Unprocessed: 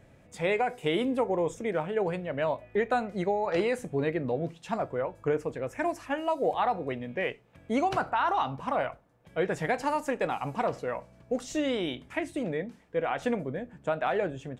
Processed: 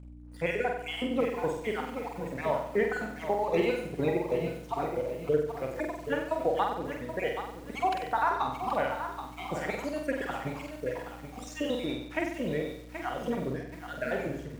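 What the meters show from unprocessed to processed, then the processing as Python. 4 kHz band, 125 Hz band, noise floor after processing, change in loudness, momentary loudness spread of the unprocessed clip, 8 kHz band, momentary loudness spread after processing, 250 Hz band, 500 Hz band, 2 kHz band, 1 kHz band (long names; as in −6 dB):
−1.0 dB, −1.5 dB, −45 dBFS, −1.5 dB, 7 LU, −2.0 dB, 9 LU, −2.0 dB, −1.5 dB, −1.0 dB, −2.0 dB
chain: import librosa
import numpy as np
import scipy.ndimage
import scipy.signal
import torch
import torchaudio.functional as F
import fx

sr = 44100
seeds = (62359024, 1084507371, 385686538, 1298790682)

p1 = fx.spec_dropout(x, sr, seeds[0], share_pct=54)
p2 = np.sign(p1) * np.maximum(np.abs(p1) - 10.0 ** (-54.0 / 20.0), 0.0)
p3 = fx.add_hum(p2, sr, base_hz=60, snr_db=13)
p4 = p3 + fx.room_flutter(p3, sr, wall_m=8.0, rt60_s=0.66, dry=0)
y = fx.echo_crushed(p4, sr, ms=777, feedback_pct=35, bits=8, wet_db=-9)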